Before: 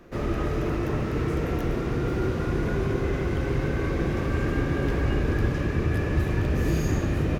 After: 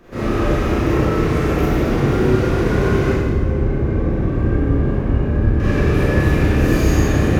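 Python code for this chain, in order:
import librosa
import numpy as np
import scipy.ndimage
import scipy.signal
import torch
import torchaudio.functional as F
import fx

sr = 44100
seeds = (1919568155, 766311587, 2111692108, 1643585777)

y = fx.curve_eq(x, sr, hz=(100.0, 800.0, 5300.0), db=(0, -7, -20), at=(3.12, 5.6))
y = fx.rev_schroeder(y, sr, rt60_s=1.3, comb_ms=29, drr_db=-8.5)
y = F.gain(torch.from_numpy(y), 1.5).numpy()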